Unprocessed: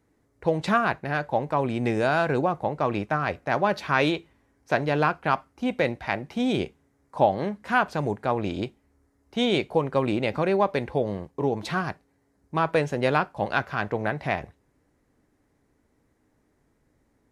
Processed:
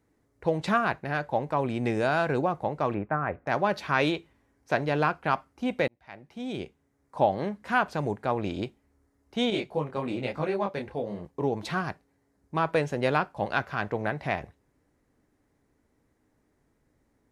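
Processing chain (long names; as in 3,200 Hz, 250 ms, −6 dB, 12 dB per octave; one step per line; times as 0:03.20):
0:02.94–0:03.47: low-pass filter 1,900 Hz 24 dB per octave
0:05.88–0:07.31: fade in
0:09.50–0:11.25: micro pitch shift up and down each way 37 cents
level −2.5 dB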